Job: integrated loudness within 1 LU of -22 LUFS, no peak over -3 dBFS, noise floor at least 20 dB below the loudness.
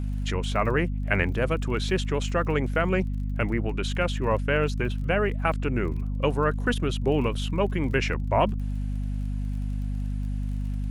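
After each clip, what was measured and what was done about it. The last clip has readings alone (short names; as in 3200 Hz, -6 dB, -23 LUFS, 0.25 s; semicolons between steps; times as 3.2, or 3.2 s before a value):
ticks 34/s; hum 50 Hz; harmonics up to 250 Hz; hum level -26 dBFS; loudness -27.0 LUFS; peak -8.5 dBFS; loudness target -22.0 LUFS
-> de-click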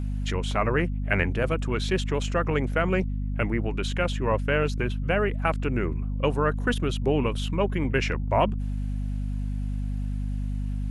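ticks 0/s; hum 50 Hz; harmonics up to 250 Hz; hum level -26 dBFS
-> de-hum 50 Hz, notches 5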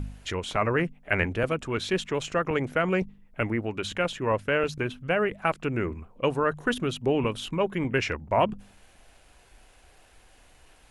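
hum none; loudness -27.5 LUFS; peak -9.0 dBFS; loudness target -22.0 LUFS
-> gain +5.5 dB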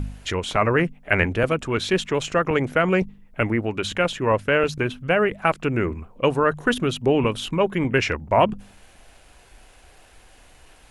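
loudness -22.5 LUFS; peak -3.5 dBFS; noise floor -52 dBFS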